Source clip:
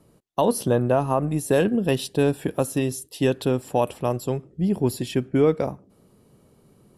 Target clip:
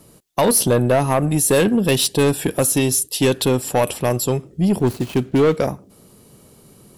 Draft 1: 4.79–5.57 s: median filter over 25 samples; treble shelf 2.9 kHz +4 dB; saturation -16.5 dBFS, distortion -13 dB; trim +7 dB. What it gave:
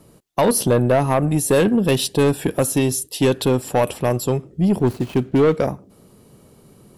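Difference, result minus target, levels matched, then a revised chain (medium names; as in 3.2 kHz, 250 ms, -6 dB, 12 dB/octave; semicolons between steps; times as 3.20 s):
8 kHz band -4.5 dB
4.79–5.57 s: median filter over 25 samples; treble shelf 2.9 kHz +11 dB; saturation -16.5 dBFS, distortion -12 dB; trim +7 dB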